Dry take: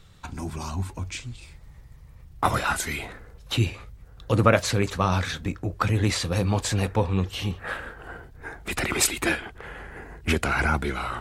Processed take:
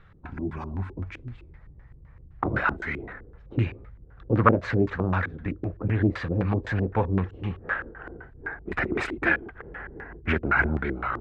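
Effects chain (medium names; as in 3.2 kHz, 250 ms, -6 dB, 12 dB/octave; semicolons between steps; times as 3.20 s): LFO low-pass square 3.9 Hz 360–1700 Hz; loudspeaker Doppler distortion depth 0.25 ms; trim -2 dB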